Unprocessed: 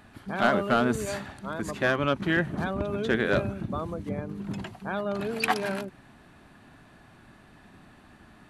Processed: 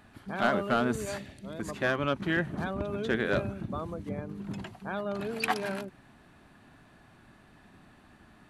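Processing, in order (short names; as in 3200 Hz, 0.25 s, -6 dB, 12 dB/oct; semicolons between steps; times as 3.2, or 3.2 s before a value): 1.18–1.6 band shelf 1100 Hz -12.5 dB 1.3 oct; gain -3.5 dB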